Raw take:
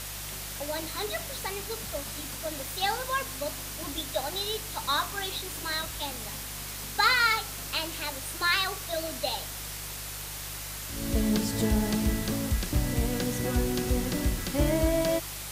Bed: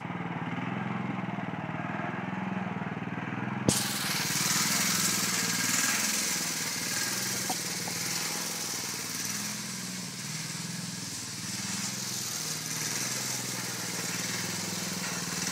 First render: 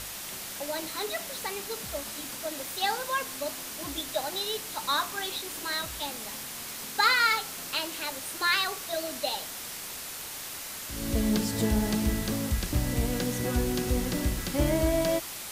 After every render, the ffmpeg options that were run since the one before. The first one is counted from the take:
-af "bandreject=f=50:t=h:w=4,bandreject=f=100:t=h:w=4,bandreject=f=150:t=h:w=4"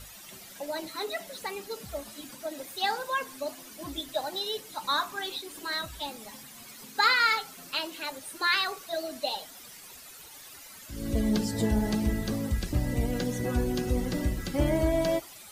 -af "afftdn=nr=13:nf=-39"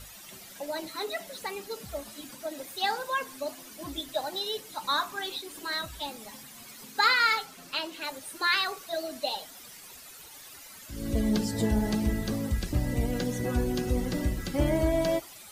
-filter_complex "[0:a]asettb=1/sr,asplit=3[s0][s1][s2];[s0]atrim=end=7.454[s3];[s1]atrim=start=7.45:end=8.02,asetpts=PTS-STARTPTS,afade=t=in:d=0.004:c=qsin,afade=t=out:st=0.566:d=0.004:c=qsin,highshelf=f=9000:g=-7.5[s4];[s2]atrim=start=8.016[s5];[s3][s4]acrossfade=d=0.004:c1=hsin:c2=qsin[s6];[s6][s5]acrossfade=d=0.004:c1=qsin:c2=hsin"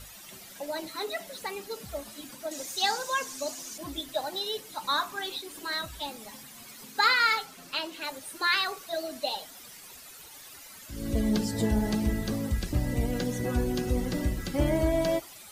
-filter_complex "[0:a]asettb=1/sr,asplit=3[s0][s1][s2];[s0]atrim=end=2.514[s3];[s1]atrim=start=2.51:end=3.78,asetpts=PTS-STARTPTS,afade=t=in:d=0.004:c=qsin,afade=t=out:st=1.266:d=0.004:c=qsin,equalizer=f=6400:w=1.3:g=13[s4];[s2]atrim=start=3.776[s5];[s3][s4]acrossfade=d=0.004:c1=hsin:c2=qsin[s6];[s6][s5]acrossfade=d=0.004:c1=qsin:c2=hsin"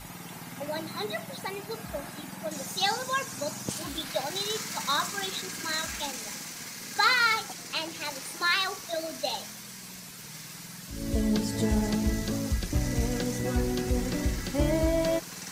-filter_complex "[1:a]volume=0.355[s0];[0:a][s0]amix=inputs=2:normalize=0"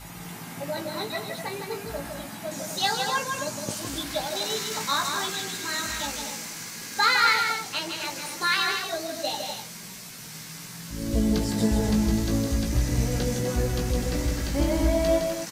-filter_complex "[0:a]asplit=2[s0][s1];[s1]adelay=18,volume=0.562[s2];[s0][s2]amix=inputs=2:normalize=0,aecho=1:1:160.3|250.7:0.562|0.355"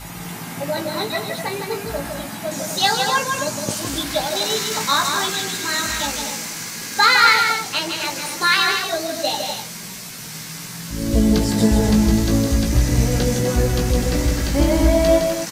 -af "volume=2.37,alimiter=limit=0.794:level=0:latency=1"

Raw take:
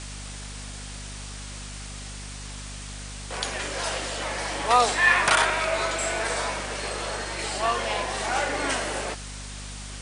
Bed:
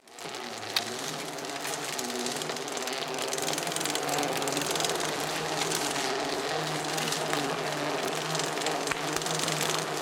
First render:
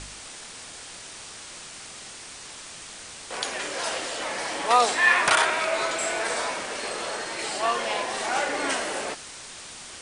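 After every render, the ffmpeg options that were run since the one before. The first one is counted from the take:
-af "bandreject=f=50:t=h:w=4,bandreject=f=100:t=h:w=4,bandreject=f=150:t=h:w=4,bandreject=f=200:t=h:w=4,bandreject=f=250:t=h:w=4"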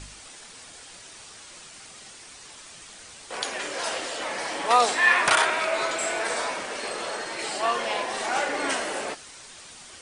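-af "afftdn=nr=6:nf=-42"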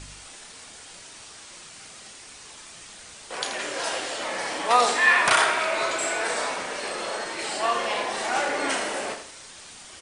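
-filter_complex "[0:a]asplit=2[s0][s1];[s1]adelay=33,volume=0.299[s2];[s0][s2]amix=inputs=2:normalize=0,aecho=1:1:81|162|243|324:0.335|0.124|0.0459|0.017"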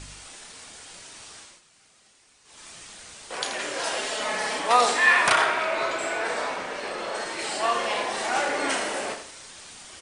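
-filter_complex "[0:a]asettb=1/sr,asplit=3[s0][s1][s2];[s0]atrim=end=3.974[s3];[s1]atrim=start=3.97:end=4.6,asetpts=PTS-STARTPTS,afade=t=in:d=0.004:c=qsin,afade=t=out:st=0.626:d=0.004:c=qsin,aecho=1:1:4.7:0.74,atrim=end_sample=27783[s4];[s2]atrim=start=4.596[s5];[s3][s4]acrossfade=d=0.004:c1=hsin:c2=qsin[s6];[s6][s5]acrossfade=d=0.004:c1=qsin:c2=hsin,asettb=1/sr,asplit=3[s7][s8][s9];[s7]atrim=end=5.324[s10];[s8]atrim=start=5.32:end=7.15,asetpts=PTS-STARTPTS,afade=t=in:d=0.004:c=qsin,afade=t=out:st=1.826:d=0.004:c=qsin,aemphasis=mode=reproduction:type=50kf[s11];[s9]atrim=start=7.146[s12];[s10][s11]acrossfade=d=0.004:c1=hsin:c2=qsin[s13];[s13][s12]acrossfade=d=0.004:c1=qsin:c2=hsin,asplit=3[s14][s15][s16];[s14]atrim=end=1.61,asetpts=PTS-STARTPTS,afade=t=out:st=1.38:d=0.23:silence=0.188365[s17];[s15]atrim=start=1.61:end=2.44,asetpts=PTS-STARTPTS,volume=0.188[s18];[s16]atrim=start=2.44,asetpts=PTS-STARTPTS,afade=t=in:d=0.23:silence=0.188365[s19];[s17][s18][s19]concat=n=3:v=0:a=1"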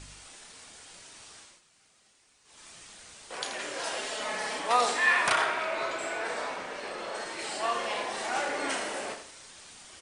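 -af "volume=0.531"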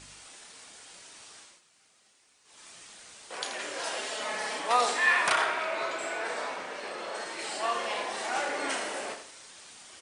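-af "lowshelf=f=110:g=-12"

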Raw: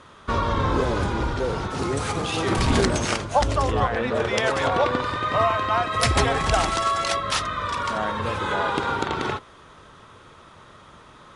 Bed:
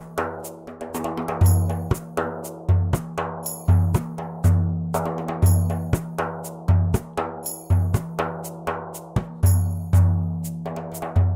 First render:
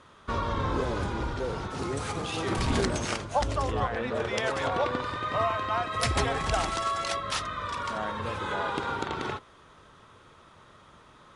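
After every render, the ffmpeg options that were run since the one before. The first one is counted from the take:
-af "volume=0.473"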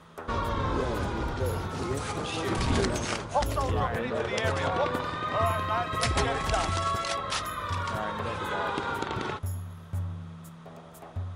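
-filter_complex "[1:a]volume=0.15[s0];[0:a][s0]amix=inputs=2:normalize=0"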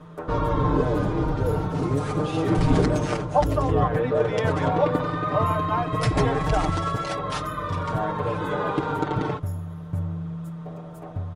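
-af "tiltshelf=f=1200:g=7.5,aecho=1:1:6.6:0.87"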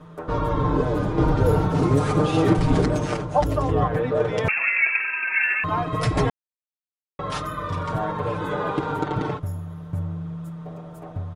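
-filter_complex "[0:a]asettb=1/sr,asplit=3[s0][s1][s2];[s0]atrim=end=4.484[s3];[s1]atrim=start=4.48:end=5.64,asetpts=PTS-STARTPTS,afade=t=in:d=0.004:c=qsin,afade=t=out:st=1.156:d=0.004:c=qsin,lowpass=f=2400:t=q:w=0.5098,lowpass=f=2400:t=q:w=0.6013,lowpass=f=2400:t=q:w=0.9,lowpass=f=2400:t=q:w=2.563,afreqshift=-2800[s4];[s2]atrim=start=5.636[s5];[s3][s4]acrossfade=d=0.004:c1=hsin:c2=qsin[s6];[s6][s5]acrossfade=d=0.004:c1=qsin:c2=hsin,asplit=5[s7][s8][s9][s10][s11];[s7]atrim=end=1.182[s12];[s8]atrim=start=1.178:end=2.532,asetpts=PTS-STARTPTS,volume=1.78[s13];[s9]atrim=start=2.528:end=6.3,asetpts=PTS-STARTPTS,afade=t=out:st=3.768:d=0.004:c=hsin[s14];[s10]atrim=start=6.3:end=7.19,asetpts=PTS-STARTPTS,volume=0[s15];[s11]atrim=start=7.19,asetpts=PTS-STARTPTS,afade=t=in:d=0.004:c=hsin[s16];[s12][s13]acrossfade=d=0.004:c1=hsin:c2=hsin[s17];[s14][s15][s16]concat=n=3:v=0:a=1[s18];[s17][s18]acrossfade=d=0.004:c1=hsin:c2=hsin"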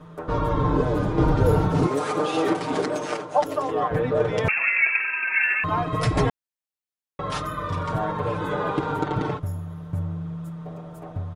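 -filter_complex "[0:a]asettb=1/sr,asplit=3[s0][s1][s2];[s0]atrim=end=1.874[s3];[s1]atrim=start=1.87:end=3.91,asetpts=PTS-STARTPTS,afade=t=in:d=0.004:c=qsin,afade=t=out:st=2.036:d=0.004:c=qsin,highpass=360[s4];[s2]atrim=start=3.906[s5];[s3][s4]acrossfade=d=0.004:c1=hsin:c2=qsin[s6];[s6][s5]acrossfade=d=0.004:c1=qsin:c2=hsin"

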